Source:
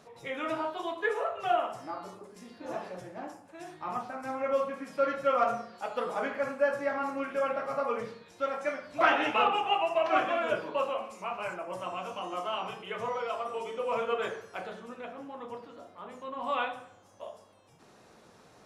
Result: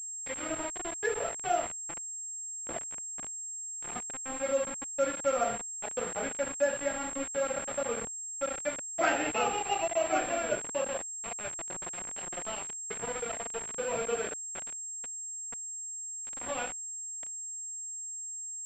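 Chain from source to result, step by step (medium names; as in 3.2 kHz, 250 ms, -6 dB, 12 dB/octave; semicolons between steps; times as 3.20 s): median filter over 9 samples; peaking EQ 1.1 kHz -11.5 dB 0.53 oct; small samples zeroed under -34 dBFS; class-D stage that switches slowly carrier 7.5 kHz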